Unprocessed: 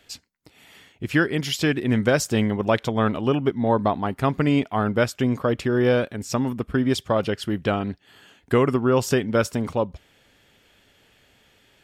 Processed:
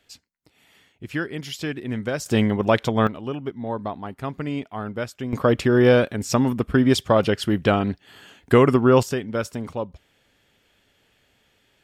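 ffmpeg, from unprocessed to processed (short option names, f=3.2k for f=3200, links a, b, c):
-af "asetnsamples=n=441:p=0,asendcmd='2.26 volume volume 2dB;3.07 volume volume -8dB;5.33 volume volume 4dB;9.03 volume volume -5dB',volume=-7dB"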